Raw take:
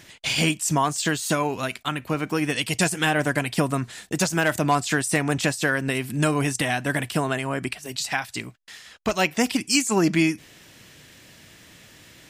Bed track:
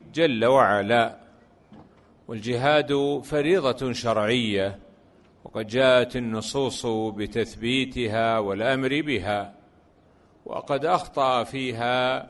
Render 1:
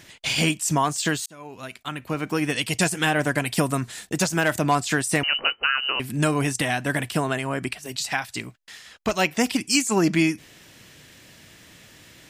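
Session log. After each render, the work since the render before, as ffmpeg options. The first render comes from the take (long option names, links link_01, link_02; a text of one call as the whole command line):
ffmpeg -i in.wav -filter_complex "[0:a]asettb=1/sr,asplit=3[link_01][link_02][link_03];[link_01]atrim=end=3.454[link_04];[link_02]atrim=start=3.45:end=4.05,asetpts=PTS-STARTPTS,afade=type=in:duration=0.004:curve=qsin,afade=type=out:start_time=0.596:duration=0.004:curve=qsin,highshelf=frequency=6200:gain=7[link_05];[link_03]atrim=start=4.046[link_06];[link_04][link_05]acrossfade=duration=0.004:curve1=hsin:curve2=qsin[link_07];[link_07][link_06]acrossfade=duration=0.004:curve1=qsin:curve2=hsin,asettb=1/sr,asplit=3[link_08][link_09][link_10];[link_08]atrim=end=5.234[link_11];[link_09]atrim=start=5.23:end=6,asetpts=PTS-STARTPTS,afade=type=in:duration=0.004:curve=qsin,afade=type=out:start_time=0.766:duration=0.004:curve=qsin,lowpass=frequency=2600:width_type=q:width=0.5098,lowpass=frequency=2600:width_type=q:width=0.6013,lowpass=frequency=2600:width_type=q:width=0.9,lowpass=frequency=2600:width_type=q:width=2.563,afreqshift=-3100[link_12];[link_10]atrim=start=5.996[link_13];[link_11][link_12]acrossfade=duration=0.004:curve1=hsin:curve2=qsin[link_14];[link_14][link_13]acrossfade=duration=0.004:curve1=qsin:curve2=hsin,asplit=2[link_15][link_16];[link_15]atrim=end=1.26,asetpts=PTS-STARTPTS,afade=type=out:start_time=1.256:duration=0.004:curve=hsin[link_17];[link_16]atrim=start=1.26,asetpts=PTS-STARTPTS,afade=type=in:duration=1.09[link_18];[link_17][link_18]concat=n=2:v=0:a=1" out.wav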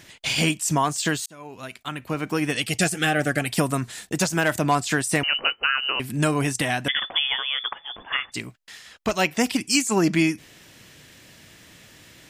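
ffmpeg -i in.wav -filter_complex "[0:a]asettb=1/sr,asplit=3[link_01][link_02][link_03];[link_01]atrim=end=2.574[link_04];[link_02]atrim=start=2.57:end=3.47,asetpts=PTS-STARTPTS,afade=type=in:duration=0.004:curve=qsin,afade=type=out:start_time=0.896:duration=0.004:curve=qsin,asuperstop=centerf=980:order=20:qfactor=4.5[link_05];[link_03]atrim=start=3.466[link_06];[link_04][link_05]acrossfade=duration=0.004:curve1=hsin:curve2=qsin[link_07];[link_07][link_06]acrossfade=duration=0.004:curve1=qsin:curve2=hsin,asettb=1/sr,asplit=3[link_08][link_09][link_10];[link_08]atrim=end=6.884[link_11];[link_09]atrim=start=6.88:end=8.32,asetpts=PTS-STARTPTS,afade=type=in:duration=0.004:curve=qsin,afade=type=out:start_time=1.436:duration=0.004:curve=qsin,lowpass=frequency=3100:width_type=q:width=0.5098,lowpass=frequency=3100:width_type=q:width=0.6013,lowpass=frequency=3100:width_type=q:width=0.9,lowpass=frequency=3100:width_type=q:width=2.563,afreqshift=-3600[link_12];[link_10]atrim=start=8.316[link_13];[link_11][link_12]acrossfade=duration=0.004:curve1=hsin:curve2=qsin[link_14];[link_14][link_13]acrossfade=duration=0.004:curve1=qsin:curve2=hsin" out.wav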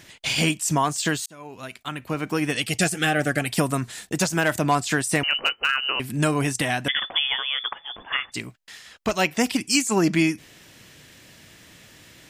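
ffmpeg -i in.wav -filter_complex "[0:a]asplit=3[link_01][link_02][link_03];[link_01]afade=type=out:start_time=5.3:duration=0.02[link_04];[link_02]volume=12.5dB,asoftclip=hard,volume=-12.5dB,afade=type=in:start_time=5.3:duration=0.02,afade=type=out:start_time=5.85:duration=0.02[link_05];[link_03]afade=type=in:start_time=5.85:duration=0.02[link_06];[link_04][link_05][link_06]amix=inputs=3:normalize=0" out.wav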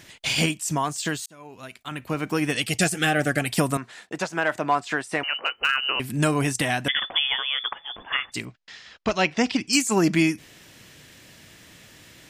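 ffmpeg -i in.wav -filter_complex "[0:a]asettb=1/sr,asplit=3[link_01][link_02][link_03];[link_01]atrim=end=3.774[link_04];[link_02]atrim=start=3.77:end=5.55,asetpts=PTS-STARTPTS,afade=type=in:duration=0.004:curve=qsin,afade=type=out:start_time=1.776:duration=0.004:curve=qsin,bandpass=frequency=1000:width_type=q:width=0.57[link_05];[link_03]atrim=start=5.546[link_06];[link_04][link_05]acrossfade=duration=0.004:curve1=hsin:curve2=qsin[link_07];[link_07][link_06]acrossfade=duration=0.004:curve1=qsin:curve2=hsin,asettb=1/sr,asplit=3[link_08][link_09][link_10];[link_08]atrim=end=8.454[link_11];[link_09]atrim=start=8.45:end=9.73,asetpts=PTS-STARTPTS,afade=type=in:duration=0.004:curve=qsin,afade=type=out:start_time=1.276:duration=0.004:curve=qsin,lowpass=frequency=5900:width=0.5412,lowpass=frequency=5900:width=1.3066[link_12];[link_10]atrim=start=9.726[link_13];[link_11][link_12]acrossfade=duration=0.004:curve1=hsin:curve2=qsin[link_14];[link_14][link_13]acrossfade=duration=0.004:curve1=qsin:curve2=hsin,asplit=3[link_15][link_16][link_17];[link_15]atrim=end=0.462[link_18];[link_16]atrim=start=0.458:end=1.912,asetpts=PTS-STARTPTS,volume=-3.5dB[link_19];[link_17]atrim=start=1.908[link_20];[link_18][link_19]acrossfade=duration=0.004:curve1=hsin:curve2=hsin[link_21];[link_21][link_20]acrossfade=duration=0.004:curve1=hsin:curve2=hsin" out.wav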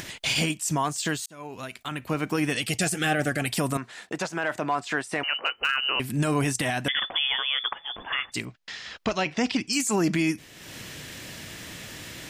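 ffmpeg -i in.wav -af "acompressor=mode=upward:threshold=-30dB:ratio=2.5,alimiter=limit=-15.5dB:level=0:latency=1:release=14" out.wav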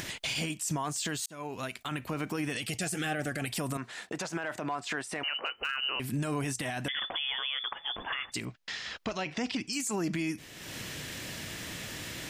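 ffmpeg -i in.wav -af "acompressor=threshold=-26dB:ratio=6,alimiter=limit=-24dB:level=0:latency=1:release=33" out.wav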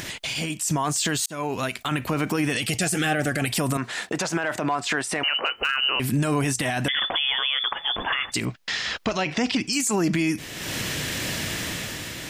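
ffmpeg -i in.wav -filter_complex "[0:a]asplit=2[link_01][link_02];[link_02]alimiter=level_in=7dB:limit=-24dB:level=0:latency=1:release=38,volume=-7dB,volume=0dB[link_03];[link_01][link_03]amix=inputs=2:normalize=0,dynaudnorm=framelen=110:gausssize=11:maxgain=6dB" out.wav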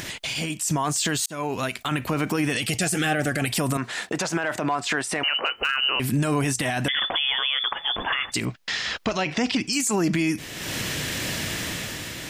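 ffmpeg -i in.wav -af anull out.wav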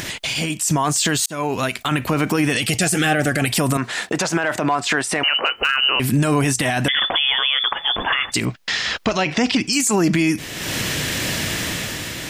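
ffmpeg -i in.wav -af "volume=5.5dB" out.wav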